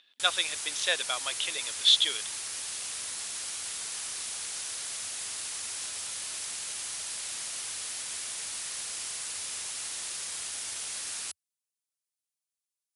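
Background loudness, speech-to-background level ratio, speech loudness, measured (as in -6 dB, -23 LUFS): -34.0 LUFS, 7.5 dB, -26.5 LUFS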